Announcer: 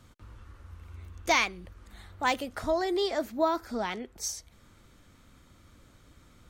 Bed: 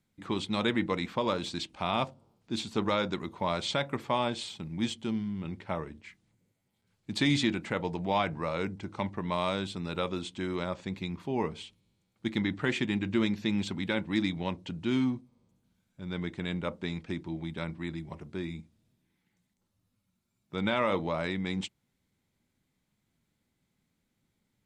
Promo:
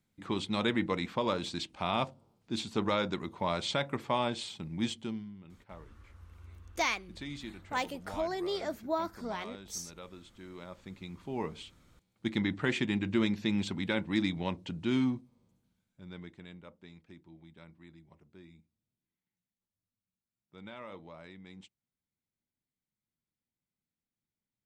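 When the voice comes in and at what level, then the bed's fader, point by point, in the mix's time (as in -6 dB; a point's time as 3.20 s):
5.50 s, -6.0 dB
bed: 4.98 s -1.5 dB
5.45 s -16 dB
10.35 s -16 dB
11.79 s -1 dB
15.51 s -1 dB
16.66 s -18 dB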